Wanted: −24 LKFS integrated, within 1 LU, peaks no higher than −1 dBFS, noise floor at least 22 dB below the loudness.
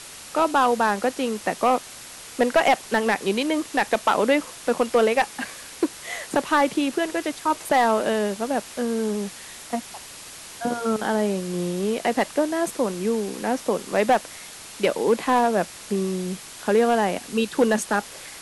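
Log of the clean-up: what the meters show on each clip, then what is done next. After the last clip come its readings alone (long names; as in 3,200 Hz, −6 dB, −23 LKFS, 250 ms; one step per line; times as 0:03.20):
share of clipped samples 0.5%; peaks flattened at −11.0 dBFS; background noise floor −41 dBFS; target noise floor −46 dBFS; integrated loudness −23.5 LKFS; sample peak −11.0 dBFS; target loudness −24.0 LKFS
→ clipped peaks rebuilt −11 dBFS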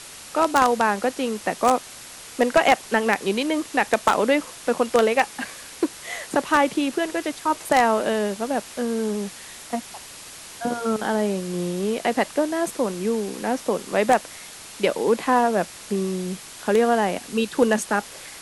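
share of clipped samples 0.0%; background noise floor −41 dBFS; target noise floor −45 dBFS
→ broadband denoise 6 dB, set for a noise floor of −41 dBFS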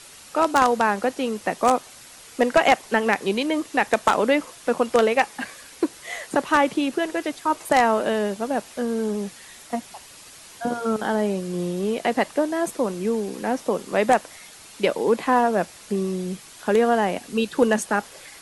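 background noise floor −45 dBFS; integrated loudness −23.0 LKFS; sample peak −2.0 dBFS; target loudness −24.0 LKFS
→ level −1 dB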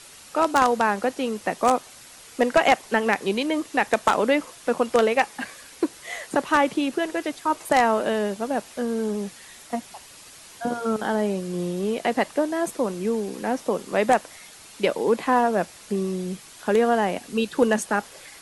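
integrated loudness −24.0 LKFS; sample peak −3.0 dBFS; background noise floor −46 dBFS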